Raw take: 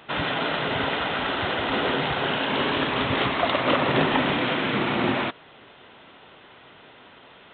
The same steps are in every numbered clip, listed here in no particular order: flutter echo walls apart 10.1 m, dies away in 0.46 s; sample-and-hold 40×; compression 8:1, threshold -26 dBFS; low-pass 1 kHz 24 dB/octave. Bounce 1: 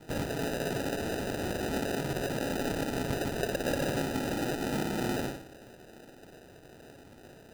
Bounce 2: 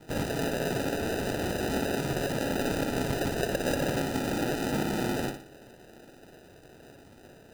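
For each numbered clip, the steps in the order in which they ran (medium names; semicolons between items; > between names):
flutter echo > compression > low-pass > sample-and-hold; low-pass > compression > sample-and-hold > flutter echo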